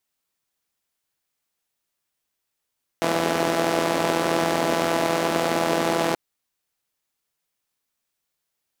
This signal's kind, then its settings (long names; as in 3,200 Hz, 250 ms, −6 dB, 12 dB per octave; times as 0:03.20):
pulse-train model of a four-cylinder engine, steady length 3.13 s, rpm 5,000, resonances 280/400/590 Hz